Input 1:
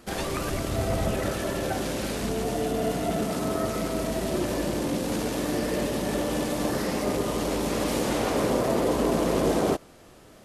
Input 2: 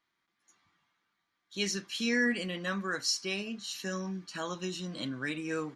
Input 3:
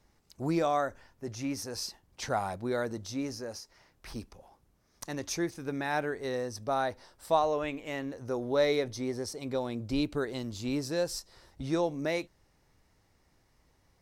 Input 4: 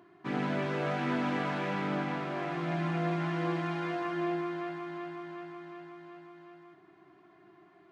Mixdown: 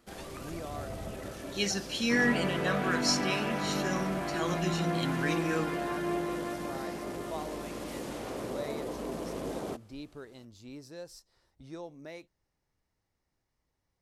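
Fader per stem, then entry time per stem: −13.5, +1.5, −14.0, −0.5 decibels; 0.00, 0.00, 0.00, 1.85 seconds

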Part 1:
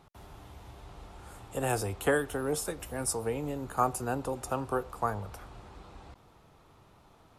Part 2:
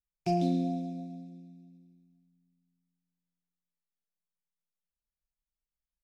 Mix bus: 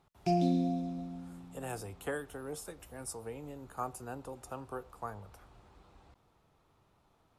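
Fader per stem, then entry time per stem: −10.5, −0.5 decibels; 0.00, 0.00 seconds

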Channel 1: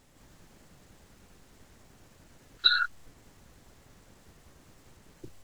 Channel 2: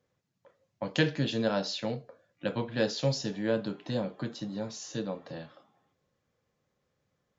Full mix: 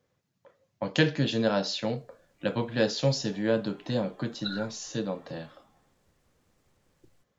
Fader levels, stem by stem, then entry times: −13.5, +3.0 decibels; 1.80, 0.00 seconds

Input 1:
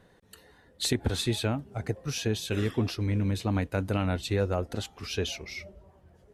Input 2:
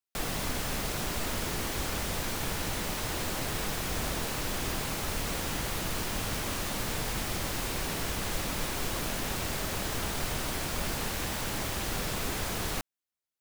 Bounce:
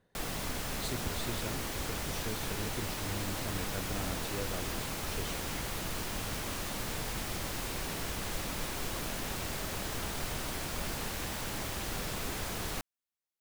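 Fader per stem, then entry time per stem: −12.5, −4.0 decibels; 0.00, 0.00 seconds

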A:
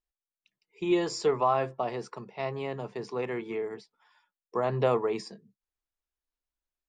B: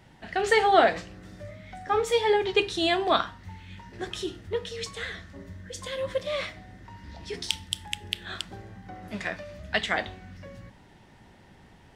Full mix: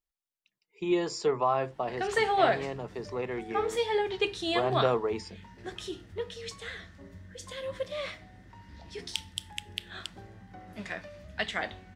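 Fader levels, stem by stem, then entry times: −1.5, −5.5 decibels; 0.00, 1.65 seconds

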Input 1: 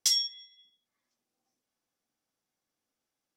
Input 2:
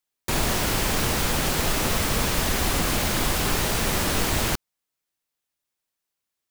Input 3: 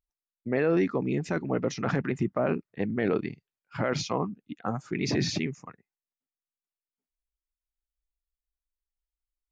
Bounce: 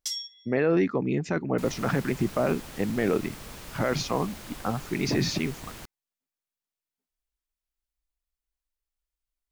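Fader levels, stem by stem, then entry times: −7.0, −19.0, +1.5 decibels; 0.00, 1.30, 0.00 seconds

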